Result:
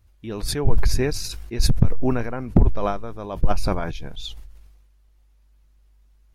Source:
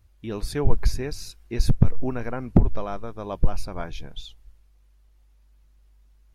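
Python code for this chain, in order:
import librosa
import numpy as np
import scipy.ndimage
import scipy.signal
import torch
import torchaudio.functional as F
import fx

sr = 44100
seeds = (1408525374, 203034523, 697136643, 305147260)

y = fx.sustainer(x, sr, db_per_s=40.0)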